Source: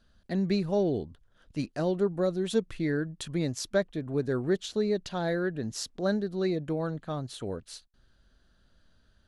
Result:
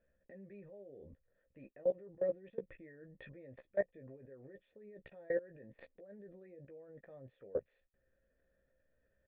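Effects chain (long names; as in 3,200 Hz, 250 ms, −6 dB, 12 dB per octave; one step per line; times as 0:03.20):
stylus tracing distortion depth 0.024 ms
reversed playback
downward compressor 12 to 1, threshold −39 dBFS, peak gain reduction 19 dB
reversed playback
formant resonators in series e
output level in coarse steps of 24 dB
double-tracking delay 15 ms −6.5 dB
level +17.5 dB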